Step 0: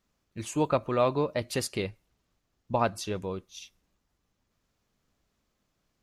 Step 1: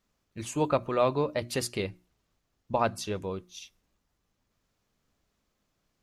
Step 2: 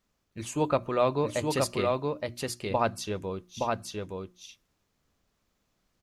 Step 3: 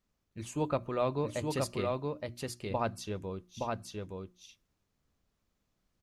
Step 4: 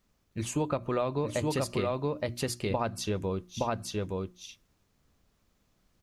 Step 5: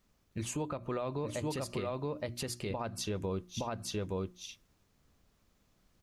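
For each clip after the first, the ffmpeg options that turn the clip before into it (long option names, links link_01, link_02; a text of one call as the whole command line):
ffmpeg -i in.wav -af "bandreject=frequency=60:width_type=h:width=6,bandreject=frequency=120:width_type=h:width=6,bandreject=frequency=180:width_type=h:width=6,bandreject=frequency=240:width_type=h:width=6,bandreject=frequency=300:width_type=h:width=6,bandreject=frequency=360:width_type=h:width=6" out.wav
ffmpeg -i in.wav -af "aecho=1:1:869:0.708" out.wav
ffmpeg -i in.wav -af "lowshelf=frequency=260:gain=5.5,volume=-7dB" out.wav
ffmpeg -i in.wav -af "acompressor=threshold=-34dB:ratio=10,volume=8.5dB" out.wav
ffmpeg -i in.wav -af "alimiter=level_in=2.5dB:limit=-24dB:level=0:latency=1:release=222,volume=-2.5dB" out.wav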